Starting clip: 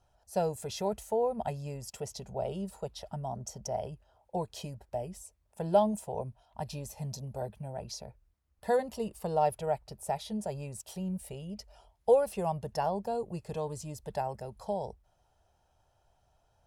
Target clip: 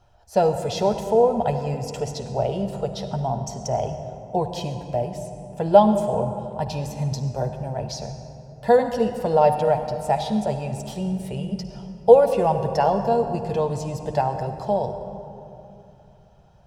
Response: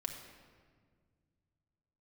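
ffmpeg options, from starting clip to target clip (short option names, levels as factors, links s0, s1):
-filter_complex "[0:a]asplit=2[s0][s1];[1:a]atrim=start_sample=2205,asetrate=22932,aresample=44100,lowpass=6600[s2];[s1][s2]afir=irnorm=-1:irlink=0,volume=1.19[s3];[s0][s3]amix=inputs=2:normalize=0,volume=1.41"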